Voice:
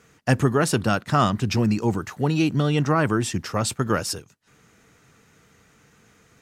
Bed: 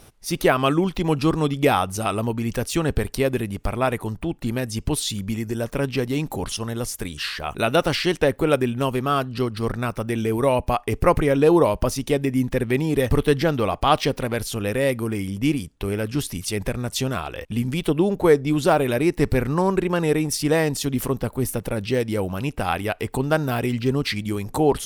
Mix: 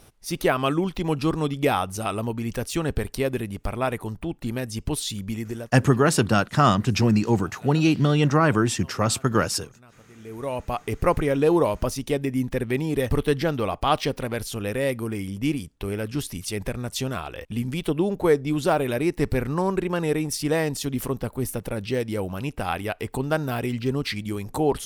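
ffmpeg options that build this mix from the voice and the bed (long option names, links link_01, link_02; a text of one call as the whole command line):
ffmpeg -i stem1.wav -i stem2.wav -filter_complex "[0:a]adelay=5450,volume=1.5dB[link_01];[1:a]volume=20dB,afade=type=out:start_time=5.48:duration=0.27:silence=0.0668344,afade=type=in:start_time=10.14:duration=0.82:silence=0.0668344[link_02];[link_01][link_02]amix=inputs=2:normalize=0" out.wav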